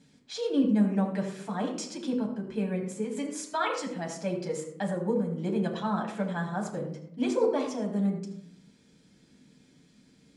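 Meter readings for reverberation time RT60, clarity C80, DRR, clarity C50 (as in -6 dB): 0.75 s, 9.0 dB, 0.5 dB, 7.0 dB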